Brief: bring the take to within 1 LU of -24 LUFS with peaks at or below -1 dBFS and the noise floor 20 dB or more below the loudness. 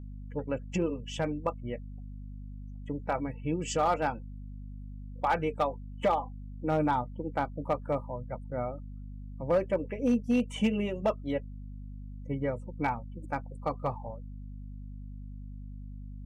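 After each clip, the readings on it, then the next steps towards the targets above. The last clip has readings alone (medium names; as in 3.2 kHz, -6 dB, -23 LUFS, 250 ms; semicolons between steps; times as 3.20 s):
clipped samples 0.2%; clipping level -19.0 dBFS; hum 50 Hz; highest harmonic 250 Hz; hum level -40 dBFS; loudness -32.0 LUFS; peak level -19.0 dBFS; loudness target -24.0 LUFS
-> clip repair -19 dBFS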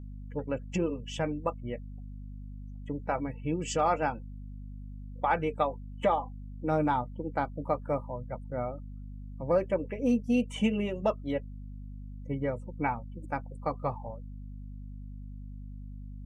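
clipped samples 0.0%; hum 50 Hz; highest harmonic 250 Hz; hum level -40 dBFS
-> de-hum 50 Hz, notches 5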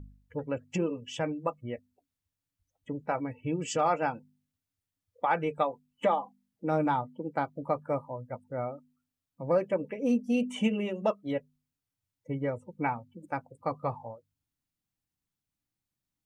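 hum not found; loudness -32.0 LUFS; peak level -13.5 dBFS; loudness target -24.0 LUFS
-> trim +8 dB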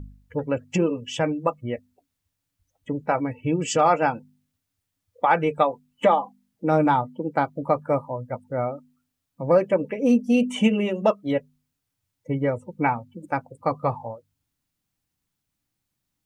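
loudness -24.0 LUFS; peak level -5.5 dBFS; noise floor -81 dBFS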